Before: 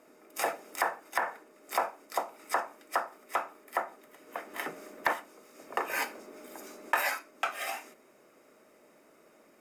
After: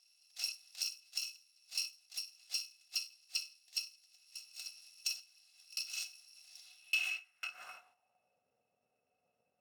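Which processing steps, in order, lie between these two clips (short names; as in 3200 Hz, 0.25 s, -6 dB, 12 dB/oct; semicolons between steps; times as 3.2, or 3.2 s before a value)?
FFT order left unsorted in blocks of 128 samples; small resonant body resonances 730/2600 Hz, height 17 dB, ringing for 85 ms; band-pass sweep 4700 Hz -> 470 Hz, 6.59–8.45; gain -1 dB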